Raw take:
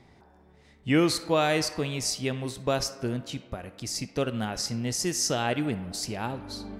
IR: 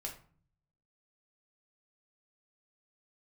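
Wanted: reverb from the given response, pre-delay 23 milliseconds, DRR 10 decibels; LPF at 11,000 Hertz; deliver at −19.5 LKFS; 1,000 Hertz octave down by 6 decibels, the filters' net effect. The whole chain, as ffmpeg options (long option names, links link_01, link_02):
-filter_complex "[0:a]lowpass=11000,equalizer=frequency=1000:width_type=o:gain=-9,asplit=2[link_01][link_02];[1:a]atrim=start_sample=2205,adelay=23[link_03];[link_02][link_03]afir=irnorm=-1:irlink=0,volume=-8.5dB[link_04];[link_01][link_04]amix=inputs=2:normalize=0,volume=9.5dB"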